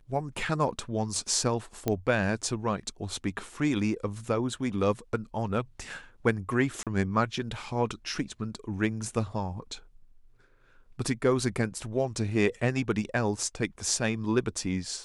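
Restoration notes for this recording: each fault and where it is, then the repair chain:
1.88 pop -13 dBFS
6.83–6.87 gap 37 ms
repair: de-click; interpolate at 6.83, 37 ms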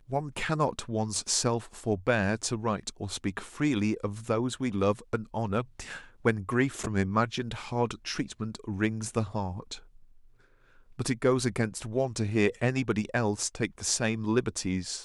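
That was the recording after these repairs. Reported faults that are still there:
none

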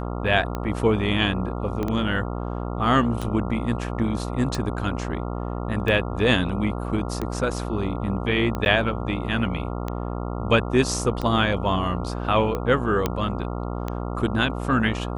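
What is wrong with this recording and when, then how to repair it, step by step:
buzz 60 Hz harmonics 23 -29 dBFS
tick 45 rpm -15 dBFS
1.83 pop -15 dBFS
8.65–8.66 gap 9.8 ms
13.06 pop -8 dBFS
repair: de-click; de-hum 60 Hz, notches 23; interpolate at 8.65, 9.8 ms

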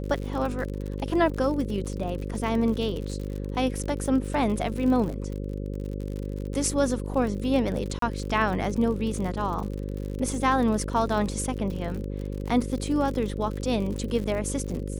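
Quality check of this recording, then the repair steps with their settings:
buzz 50 Hz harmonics 11 -32 dBFS
crackle 57/s -32 dBFS
7.99–8.02 gap 33 ms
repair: de-click; de-hum 50 Hz, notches 11; interpolate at 7.99, 33 ms

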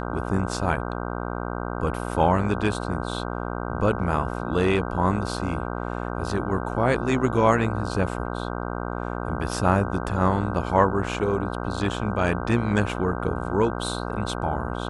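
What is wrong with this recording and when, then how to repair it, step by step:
buzz 60 Hz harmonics 26 -30 dBFS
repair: de-hum 60 Hz, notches 26

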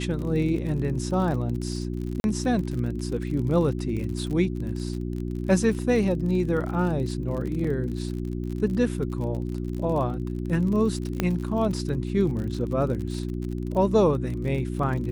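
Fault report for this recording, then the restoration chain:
crackle 44/s -32 dBFS
hum 60 Hz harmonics 6 -30 dBFS
2.2–2.24 gap 41 ms
7.64 gap 4.9 ms
11.2 pop -10 dBFS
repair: de-click; de-hum 60 Hz, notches 6; interpolate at 2.2, 41 ms; interpolate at 7.64, 4.9 ms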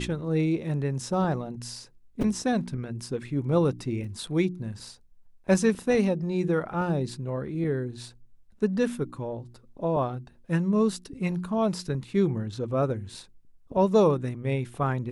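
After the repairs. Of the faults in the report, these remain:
none

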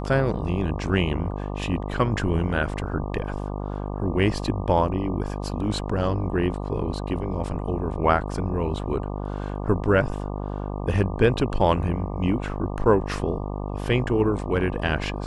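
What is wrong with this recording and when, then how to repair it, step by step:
buzz 50 Hz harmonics 24 -30 dBFS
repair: de-hum 50 Hz, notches 24

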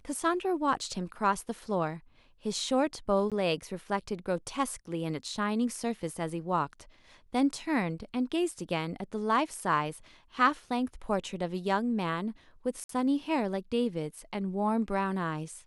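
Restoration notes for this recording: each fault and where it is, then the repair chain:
3.3–3.32 gap 17 ms
12.84–12.89 gap 53 ms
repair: interpolate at 3.3, 17 ms; interpolate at 12.84, 53 ms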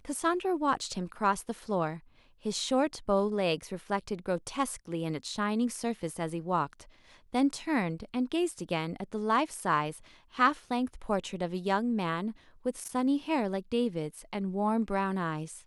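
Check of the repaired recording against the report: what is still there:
none

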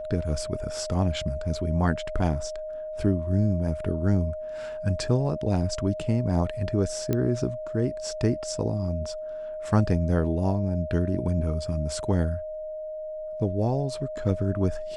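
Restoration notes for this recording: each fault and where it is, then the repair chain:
tone 620 Hz -32 dBFS
7.13 pop -13 dBFS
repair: de-click; notch 620 Hz, Q 30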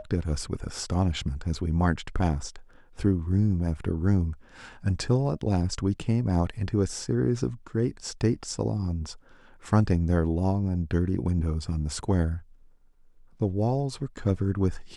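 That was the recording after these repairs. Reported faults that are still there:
none

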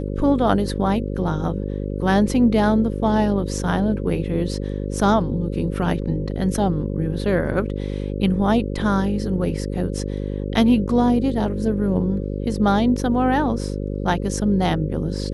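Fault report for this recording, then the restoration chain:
buzz 50 Hz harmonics 11 -26 dBFS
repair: de-hum 50 Hz, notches 11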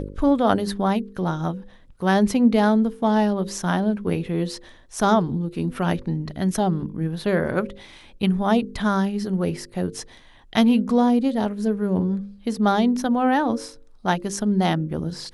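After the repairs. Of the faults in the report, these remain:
none

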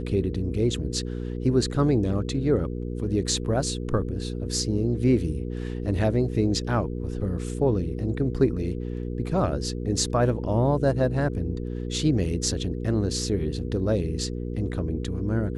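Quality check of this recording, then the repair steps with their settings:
hum 60 Hz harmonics 8 -31 dBFS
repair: de-hum 60 Hz, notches 8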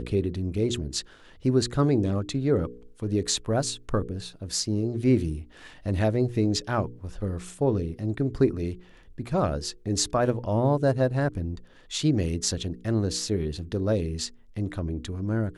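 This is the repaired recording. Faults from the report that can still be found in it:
none

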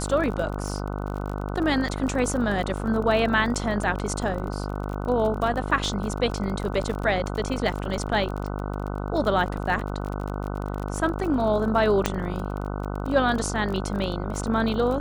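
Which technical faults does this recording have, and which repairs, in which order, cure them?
buzz 50 Hz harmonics 30 -30 dBFS
crackle 31/s -30 dBFS
12.06 pop -6 dBFS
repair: de-click; de-hum 50 Hz, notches 30

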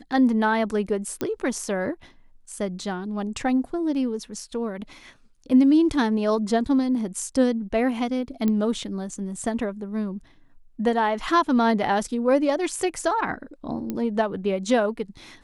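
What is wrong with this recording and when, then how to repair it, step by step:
1.21 pop -13 dBFS
8.48 pop -13 dBFS
13.9 pop -16 dBFS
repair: de-click

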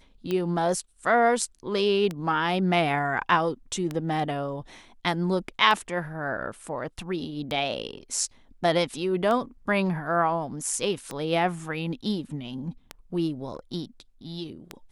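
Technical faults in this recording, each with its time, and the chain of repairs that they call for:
tick 33 1/3 rpm -16 dBFS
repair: de-click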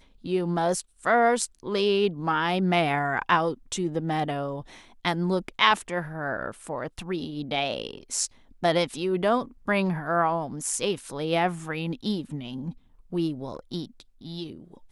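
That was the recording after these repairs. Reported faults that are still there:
none

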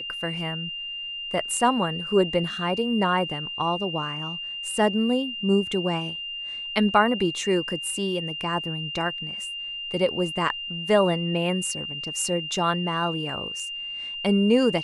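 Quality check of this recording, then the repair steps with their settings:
tone 2800 Hz -31 dBFS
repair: notch 2800 Hz, Q 30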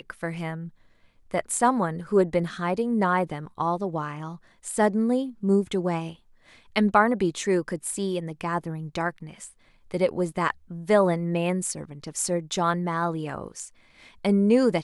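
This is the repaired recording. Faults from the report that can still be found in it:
none

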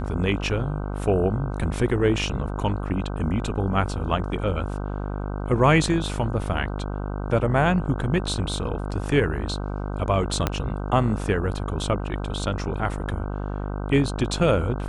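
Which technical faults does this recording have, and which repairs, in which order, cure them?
buzz 50 Hz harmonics 31 -29 dBFS
10.47 pop -7 dBFS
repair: de-click; de-hum 50 Hz, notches 31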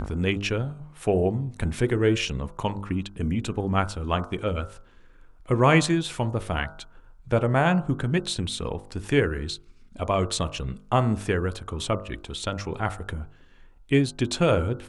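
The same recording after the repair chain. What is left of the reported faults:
10.47 pop

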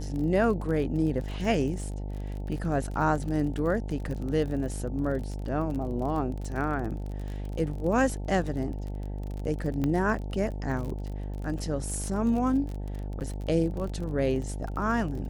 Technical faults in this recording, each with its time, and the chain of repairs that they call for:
buzz 50 Hz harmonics 18 -34 dBFS
crackle 34/s -34 dBFS
9.84 pop -17 dBFS
13.2–13.21 gap 8.5 ms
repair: de-click; de-hum 50 Hz, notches 18; interpolate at 13.2, 8.5 ms

